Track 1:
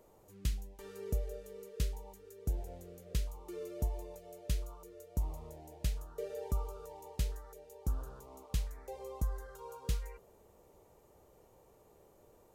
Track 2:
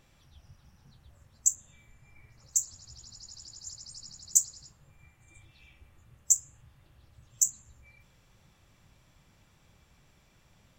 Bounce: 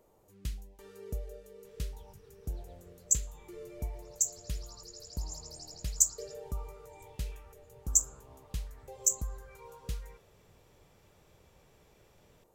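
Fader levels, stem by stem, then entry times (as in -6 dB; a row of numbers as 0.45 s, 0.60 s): -3.0 dB, -2.0 dB; 0.00 s, 1.65 s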